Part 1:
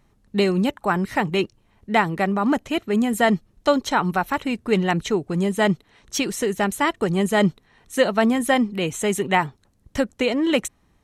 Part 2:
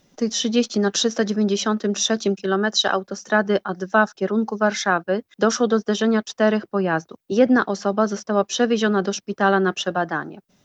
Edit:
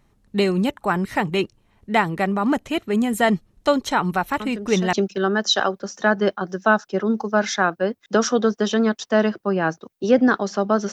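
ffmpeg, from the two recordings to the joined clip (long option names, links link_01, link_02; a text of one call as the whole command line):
ffmpeg -i cue0.wav -i cue1.wav -filter_complex "[1:a]asplit=2[link_01][link_02];[0:a]apad=whole_dur=10.92,atrim=end=10.92,atrim=end=4.932[link_03];[link_02]atrim=start=2.208:end=8.2[link_04];[link_01]atrim=start=1.68:end=2.21,asetpts=PTS-STARTPTS,volume=-11dB,afade=type=in:duration=0.004:curve=hsin,afade=type=out:start_time=0.526:duration=0.004:curve=hsin,adelay=4400[link_05];[link_03][link_04]acrossfade=duration=0.004:curve1=hsin:curve2=hsin[link_06];[link_06][link_05]amix=inputs=2:normalize=0" out.wav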